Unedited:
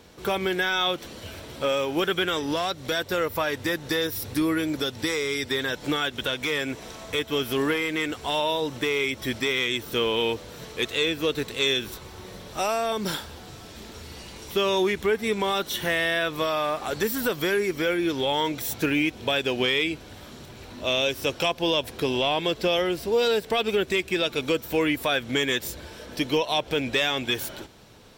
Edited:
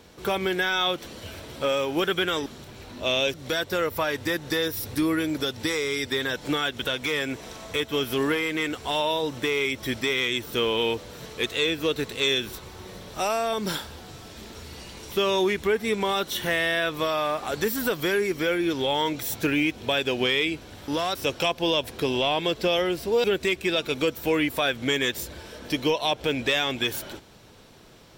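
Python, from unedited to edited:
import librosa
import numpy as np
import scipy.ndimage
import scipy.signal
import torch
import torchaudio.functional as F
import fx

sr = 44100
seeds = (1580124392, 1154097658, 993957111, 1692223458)

y = fx.edit(x, sr, fx.swap(start_s=2.46, length_s=0.27, other_s=20.27, other_length_s=0.88),
    fx.cut(start_s=23.24, length_s=0.47), tone=tone)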